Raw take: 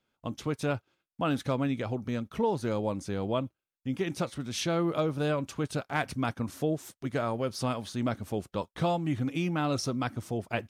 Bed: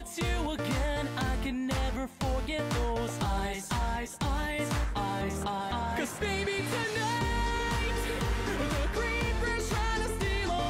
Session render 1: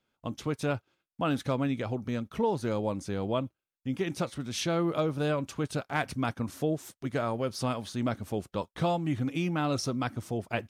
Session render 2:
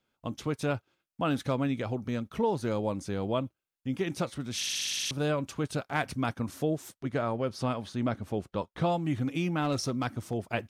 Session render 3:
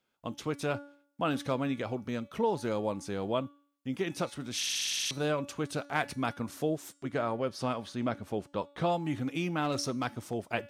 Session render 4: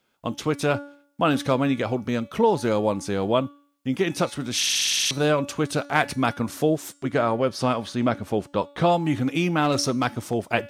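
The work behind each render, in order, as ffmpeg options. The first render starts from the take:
-af anull
-filter_complex "[0:a]asettb=1/sr,asplit=3[a][b][c];[a]atrim=end=6.984[d];[b]atrim=start=6.98:end=8.92,asetpts=PTS-STARTPTS,afade=t=in:d=0.004:c=qsin,afade=t=out:st=1.936:d=0.004:c=qsin,aemphasis=mode=reproduction:type=cd[e];[c]atrim=start=8.916[f];[d][e]acrossfade=d=0.004:c1=hsin:c2=qsin[g];[g][f]acrossfade=d=0.004:c1=qsin:c2=hsin,asettb=1/sr,asplit=3[h][i][j];[h]atrim=end=9.624[k];[i]atrim=start=9.62:end=10.34,asetpts=PTS-STARTPTS,afade=t=in:d=0.004:c=qsin,afade=t=out:st=0.716:d=0.004:c=qsin,aeval=exprs='clip(val(0),-1,0.0531)':c=same[l];[j]atrim=start=10.336[m];[k][l]acrossfade=d=0.004:c1=hsin:c2=qsin[n];[n][m]acrossfade=d=0.004:c1=qsin:c2=hsin,asplit=10[o][p][q][r][s][t][u][v][w][x];[o]atrim=end=4.632[y];[p]atrim=start=4.568:end=4.632[z];[q]atrim=start=4.568:end=4.632[aa];[r]atrim=start=4.568:end=4.632[ab];[s]atrim=start=4.568:end=4.632[ac];[t]atrim=start=4.568:end=4.632[ad];[u]atrim=start=4.568:end=4.632[ae];[v]atrim=start=4.568:end=4.632[af];[w]atrim=start=4.568:end=4.632[ag];[x]atrim=start=5.108[ah];[y][z]acrossfade=d=0.004:c1=hsin:c2=hsin[ai];[ai][aa]acrossfade=d=0.004:c1=hsin:c2=hsin[aj];[aj][ab]acrossfade=d=0.004:c1=hsin:c2=hsin[ak];[ak][ac]acrossfade=d=0.004:c1=hsin:c2=hsin[al];[al][ad]acrossfade=d=0.004:c1=hsin:c2=hsin[am];[am][ae]acrossfade=d=0.004:c1=hsin:c2=hsin[an];[an][af]acrossfade=d=0.004:c1=hsin:c2=hsin[ao];[ao][ag]acrossfade=d=0.004:c1=hsin:c2=hsin[ap];[ap][ah]acrossfade=d=0.004:c1=hsin:c2=hsin"
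-af "lowshelf=f=140:g=-10,bandreject=f=285.7:t=h:w=4,bandreject=f=571.4:t=h:w=4,bandreject=f=857.1:t=h:w=4,bandreject=f=1.1428k:t=h:w=4,bandreject=f=1.4285k:t=h:w=4,bandreject=f=1.7142k:t=h:w=4,bandreject=f=1.9999k:t=h:w=4,bandreject=f=2.2856k:t=h:w=4,bandreject=f=2.5713k:t=h:w=4,bandreject=f=2.857k:t=h:w=4,bandreject=f=3.1427k:t=h:w=4,bandreject=f=3.4284k:t=h:w=4,bandreject=f=3.7141k:t=h:w=4,bandreject=f=3.9998k:t=h:w=4,bandreject=f=4.2855k:t=h:w=4,bandreject=f=4.5712k:t=h:w=4,bandreject=f=4.8569k:t=h:w=4,bandreject=f=5.1426k:t=h:w=4,bandreject=f=5.4283k:t=h:w=4,bandreject=f=5.714k:t=h:w=4,bandreject=f=5.9997k:t=h:w=4,bandreject=f=6.2854k:t=h:w=4,bandreject=f=6.5711k:t=h:w=4,bandreject=f=6.8568k:t=h:w=4,bandreject=f=7.1425k:t=h:w=4,bandreject=f=7.4282k:t=h:w=4,bandreject=f=7.7139k:t=h:w=4,bandreject=f=7.9996k:t=h:w=4,bandreject=f=8.2853k:t=h:w=4,bandreject=f=8.571k:t=h:w=4,bandreject=f=8.8567k:t=h:w=4,bandreject=f=9.1424k:t=h:w=4,bandreject=f=9.4281k:t=h:w=4,bandreject=f=9.7138k:t=h:w=4,bandreject=f=9.9995k:t=h:w=4"
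-af "volume=9.5dB"

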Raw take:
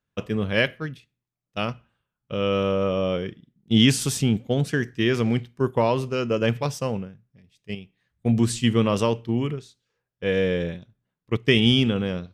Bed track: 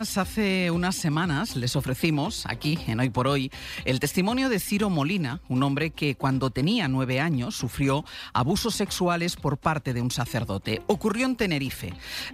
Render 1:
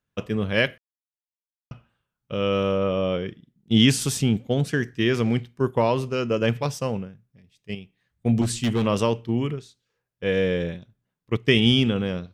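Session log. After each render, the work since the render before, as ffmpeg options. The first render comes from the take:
-filter_complex "[0:a]asettb=1/sr,asplit=3[a][b][c];[a]atrim=end=2.784[d];[b]atrim=start=2.78:end=3.28,asetpts=PTS-STARTPTS,afade=t=in:d=0.004:c=qsin,afade=t=out:st=0.496:d=0.004:c=qsin,lowpass=f=5.2k:w=0.5412,lowpass=f=5.2k:w=1.3066[e];[c]atrim=start=3.276[f];[d][e]acrossfade=d=0.004:c1=hsin:c2=qsin[g];[g][f]acrossfade=d=0.004:c1=qsin:c2=hsin,asettb=1/sr,asplit=3[h][i][j];[h]atrim=end=8.414[k];[i]atrim=start=8.41:end=8.86,asetpts=PTS-STARTPTS,afade=t=in:d=0.004:c=qsin,afade=t=out:st=0.446:d=0.004:c=qsin,asoftclip=type=hard:threshold=-18dB[l];[j]atrim=start=8.856[m];[k][l]acrossfade=d=0.004:c1=hsin:c2=qsin[n];[n][m]acrossfade=d=0.004:c1=qsin:c2=hsin,asplit=3[o][p][q];[o]atrim=end=0.78,asetpts=PTS-STARTPTS,afade=t=out:st=0.776:d=0.004:c=hsin[r];[p]atrim=start=0.78:end=1.71,asetpts=PTS-STARTPTS,volume=0[s];[q]atrim=start=1.71,asetpts=PTS-STARTPTS,afade=t=in:d=0.004:c=hsin[t];[r][s][t]concat=n=3:v=0:a=1"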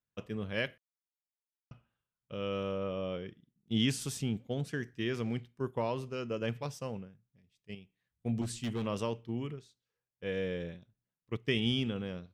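-af "volume=-12.5dB"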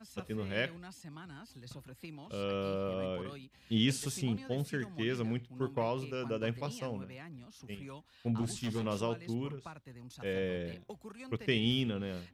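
-filter_complex "[1:a]volume=-24dB[a];[0:a][a]amix=inputs=2:normalize=0"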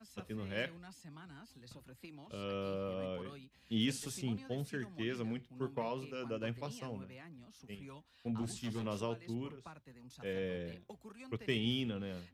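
-filter_complex "[0:a]acrossover=split=140|1300|5300[a][b][c][d];[c]volume=26dB,asoftclip=hard,volume=-26dB[e];[a][b][e][d]amix=inputs=4:normalize=0,flanger=delay=2.8:depth=1.8:regen=-74:speed=0.44:shape=triangular"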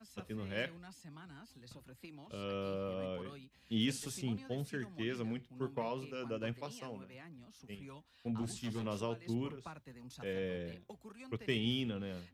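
-filter_complex "[0:a]asettb=1/sr,asplit=3[a][b][c];[a]atrim=end=6.534[d];[b]atrim=start=6.53:end=7.14,asetpts=PTS-STARTPTS,afade=t=in:d=0.004:c=qsin,afade=t=out:st=0.606:d=0.004:c=qsin,highpass=f=230:p=1[e];[c]atrim=start=7.136[f];[d][e]acrossfade=d=0.004:c1=hsin:c2=qsin[g];[g][f]acrossfade=d=0.004:c1=qsin:c2=hsin,asplit=3[h][i][j];[h]atrim=end=9.262[k];[i]atrim=start=9.258:end=10.242,asetpts=PTS-STARTPTS,volume=3.5dB[l];[j]atrim=start=10.238[m];[k][l]acrossfade=d=0.004:c1=hsin:c2=hsin[n];[n][m]acrossfade=d=0.004:c1=hsin:c2=hsin"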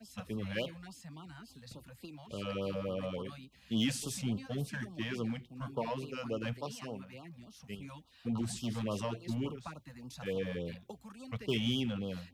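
-filter_complex "[0:a]asplit=2[a][b];[b]asoftclip=type=hard:threshold=-36dB,volume=-3.5dB[c];[a][c]amix=inputs=2:normalize=0,afftfilt=real='re*(1-between(b*sr/1024,310*pow(2000/310,0.5+0.5*sin(2*PI*3.5*pts/sr))/1.41,310*pow(2000/310,0.5+0.5*sin(2*PI*3.5*pts/sr))*1.41))':imag='im*(1-between(b*sr/1024,310*pow(2000/310,0.5+0.5*sin(2*PI*3.5*pts/sr))/1.41,310*pow(2000/310,0.5+0.5*sin(2*PI*3.5*pts/sr))*1.41))':win_size=1024:overlap=0.75"

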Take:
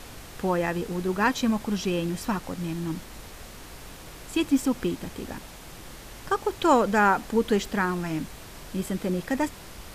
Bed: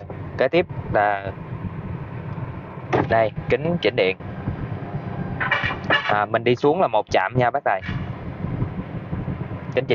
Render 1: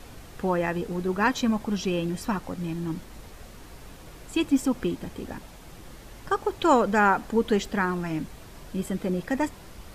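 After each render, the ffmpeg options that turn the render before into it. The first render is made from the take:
-af "afftdn=nr=6:nf=-44"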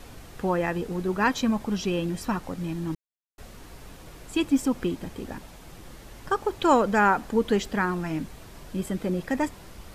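-filter_complex "[0:a]asplit=3[a][b][c];[a]atrim=end=2.95,asetpts=PTS-STARTPTS,afade=t=out:st=2.946:d=0.004:c=hsin[d];[b]atrim=start=2.95:end=3.38,asetpts=PTS-STARTPTS,volume=0[e];[c]atrim=start=3.38,asetpts=PTS-STARTPTS,afade=t=in:d=0.004:c=hsin[f];[d][e][f]concat=n=3:v=0:a=1"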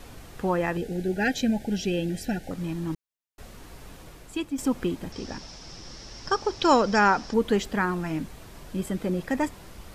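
-filter_complex "[0:a]asettb=1/sr,asplit=3[a][b][c];[a]atrim=end=0.774[d];[b]atrim=start=0.77:end=2.51,asetpts=PTS-STARTPTS,afade=t=in:d=0.004:c=qsin,afade=t=out:st=1.736:d=0.004:c=qsin,asuperstop=centerf=1100:order=20:qfactor=1.9[e];[c]atrim=start=2.506[f];[d][e]acrossfade=d=0.004:c1=hsin:c2=qsin[g];[g][f]acrossfade=d=0.004:c1=qsin:c2=hsin,asettb=1/sr,asplit=3[h][i][j];[h]atrim=end=5.124[k];[i]atrim=start=5.12:end=7.34,asetpts=PTS-STARTPTS,afade=t=in:d=0.004:c=qsin,afade=t=out:st=2.216:d=0.004:c=qsin,lowpass=f=5.4k:t=q:w=9[l];[j]atrim=start=7.336[m];[k][l]acrossfade=d=0.004:c1=hsin:c2=qsin[n];[n][m]acrossfade=d=0.004:c1=qsin:c2=hsin,asplit=2[o][p];[o]atrim=end=4.58,asetpts=PTS-STARTPTS,afade=t=out:st=4:d=0.58:silence=0.316228[q];[p]atrim=start=4.58,asetpts=PTS-STARTPTS,afade=t=in:d=0.004:c=hsin:silence=0.316228[r];[q][r]concat=n=2:v=0:a=1"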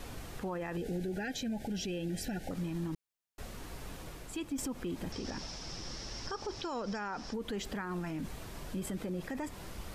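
-af "acompressor=threshold=-27dB:ratio=6,alimiter=level_in=5.5dB:limit=-24dB:level=0:latency=1:release=43,volume=-5.5dB"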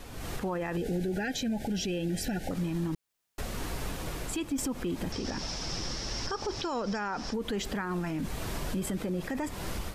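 -af "alimiter=level_in=11.5dB:limit=-24dB:level=0:latency=1:release=300,volume=-11.5dB,dynaudnorm=f=130:g=3:m=11dB"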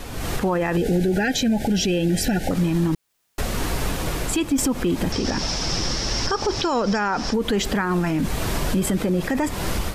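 -af "volume=11dB"

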